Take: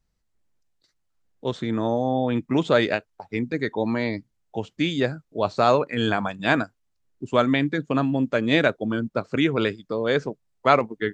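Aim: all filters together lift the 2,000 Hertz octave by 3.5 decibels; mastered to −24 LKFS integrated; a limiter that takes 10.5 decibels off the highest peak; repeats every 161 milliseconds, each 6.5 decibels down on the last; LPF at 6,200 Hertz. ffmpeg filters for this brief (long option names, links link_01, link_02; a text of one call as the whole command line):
ffmpeg -i in.wav -af "lowpass=6200,equalizer=frequency=2000:width_type=o:gain=4.5,alimiter=limit=-11dB:level=0:latency=1,aecho=1:1:161|322|483|644|805|966:0.473|0.222|0.105|0.0491|0.0231|0.0109,volume=0.5dB" out.wav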